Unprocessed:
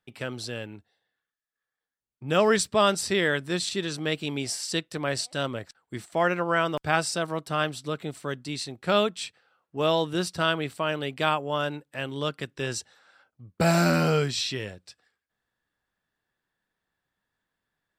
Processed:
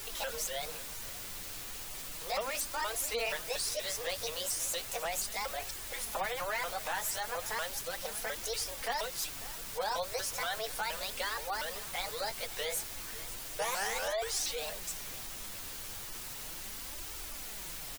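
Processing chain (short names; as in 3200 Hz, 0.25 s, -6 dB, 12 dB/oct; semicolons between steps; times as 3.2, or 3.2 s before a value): repeated pitch sweeps +8 st, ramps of 0.237 s; elliptic high-pass 470 Hz, stop band 40 dB; bell 10000 Hz +8.5 dB 1.6 oct; compressor 3:1, threshold -39 dBFS, peak gain reduction 16 dB; added noise brown -56 dBFS; on a send: echo 0.544 s -19 dB; on the sum: soft clip -33 dBFS, distortion -14 dB; requantised 8-bit, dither triangular; flange 0.35 Hz, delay 2.1 ms, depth 9.2 ms, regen -16%; spectral gate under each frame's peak -30 dB strong; gain +8.5 dB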